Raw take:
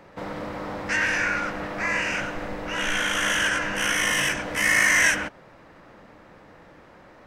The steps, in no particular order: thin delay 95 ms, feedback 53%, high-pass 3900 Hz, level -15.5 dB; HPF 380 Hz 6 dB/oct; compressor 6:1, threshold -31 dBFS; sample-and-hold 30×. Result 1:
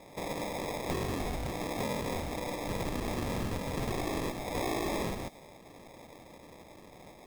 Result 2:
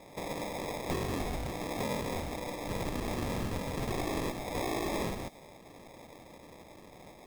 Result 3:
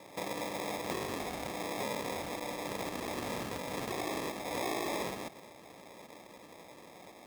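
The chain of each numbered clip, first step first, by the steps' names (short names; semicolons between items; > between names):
HPF > sample-and-hold > compressor > thin delay; compressor > HPF > sample-and-hold > thin delay; thin delay > sample-and-hold > compressor > HPF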